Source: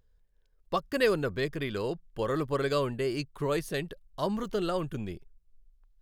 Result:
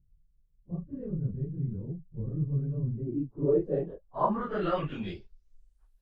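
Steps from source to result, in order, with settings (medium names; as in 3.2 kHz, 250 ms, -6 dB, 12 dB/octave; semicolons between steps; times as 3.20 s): phase randomisation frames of 100 ms; low-pass sweep 160 Hz -> 12 kHz, 2.90–5.94 s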